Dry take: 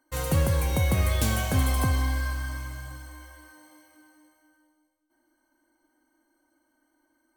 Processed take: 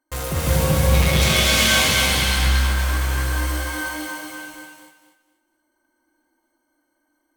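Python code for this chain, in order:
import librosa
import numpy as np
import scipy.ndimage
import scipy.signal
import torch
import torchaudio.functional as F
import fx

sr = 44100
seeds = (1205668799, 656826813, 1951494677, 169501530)

p1 = fx.fuzz(x, sr, gain_db=49.0, gate_db=-58.0)
p2 = x + F.gain(torch.from_numpy(p1), -9.5).numpy()
p3 = fx.weighting(p2, sr, curve='D', at=(0.94, 2.1))
p4 = p3 + fx.echo_thinned(p3, sr, ms=240, feedback_pct=26, hz=210.0, wet_db=-3.5, dry=0)
p5 = fx.rev_gated(p4, sr, seeds[0], gate_ms=410, shape='rising', drr_db=-5.5)
y = F.gain(torch.from_numpy(p5), -6.5).numpy()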